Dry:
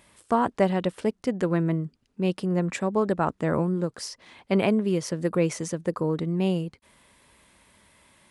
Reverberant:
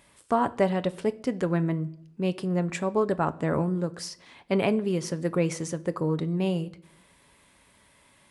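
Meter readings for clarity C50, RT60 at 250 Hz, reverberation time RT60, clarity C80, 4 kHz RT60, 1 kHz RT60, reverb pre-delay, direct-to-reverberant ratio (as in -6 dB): 20.5 dB, 0.95 s, 0.70 s, 23.5 dB, 0.50 s, 0.65 s, 7 ms, 11.5 dB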